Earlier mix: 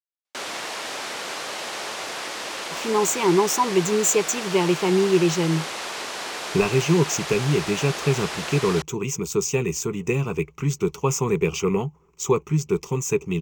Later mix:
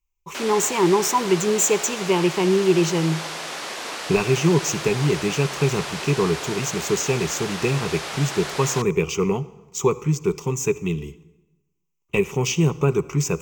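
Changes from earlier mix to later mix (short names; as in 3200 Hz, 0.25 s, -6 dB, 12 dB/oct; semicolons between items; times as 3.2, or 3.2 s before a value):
speech: entry -2.45 s; reverb: on, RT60 1.1 s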